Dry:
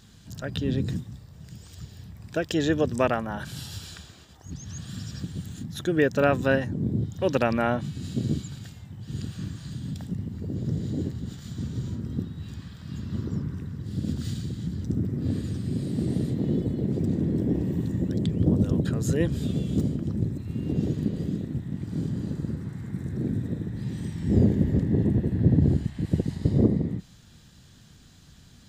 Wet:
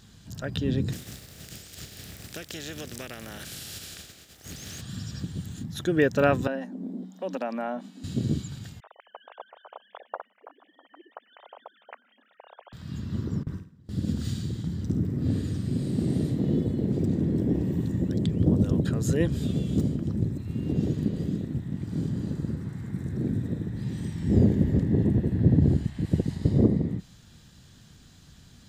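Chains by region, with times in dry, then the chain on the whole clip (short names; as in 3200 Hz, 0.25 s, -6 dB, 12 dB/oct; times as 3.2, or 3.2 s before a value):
0.92–4.8 spectral contrast lowered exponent 0.49 + bell 980 Hz -12.5 dB 0.58 oct + compressor 5:1, threshold -35 dBFS
6.47–8.04 rippled Chebyshev high-pass 180 Hz, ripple 9 dB + compressor 2:1, threshold -29 dBFS
8.8–12.73 sine-wave speech + steep high-pass 530 Hz + echo 0.652 s -23 dB
13.43–17.06 gate with hold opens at -24 dBFS, closes at -28 dBFS + flutter echo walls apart 9 m, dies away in 0.36 s
whole clip: dry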